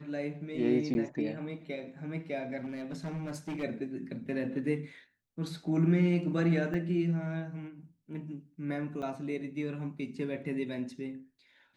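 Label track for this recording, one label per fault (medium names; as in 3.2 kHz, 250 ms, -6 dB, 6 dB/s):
0.940000	0.950000	dropout
2.590000	3.640000	clipped -33.5 dBFS
6.740000	6.740000	dropout 4.4 ms
9.020000	9.030000	dropout 5.4 ms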